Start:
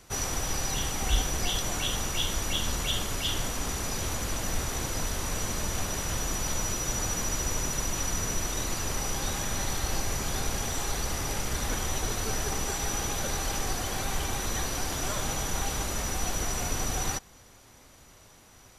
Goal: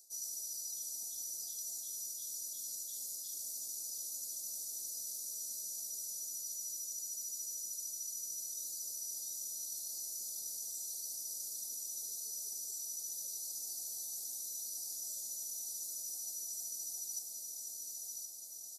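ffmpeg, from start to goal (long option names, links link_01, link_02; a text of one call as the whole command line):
ffmpeg -i in.wav -filter_complex "[0:a]acrossover=split=390|3000[link_01][link_02][link_03];[link_02]acompressor=threshold=-41dB:ratio=6[link_04];[link_01][link_04][link_03]amix=inputs=3:normalize=0,aderivative,aecho=1:1:1077|2154|3231|4308|5385:0.178|0.0907|0.0463|0.0236|0.012,areverse,acompressor=threshold=-45dB:ratio=10,areverse,asuperstop=centerf=1800:order=12:qfactor=0.51,equalizer=frequency=68:width=1.3:gain=-13.5,volume=5.5dB" out.wav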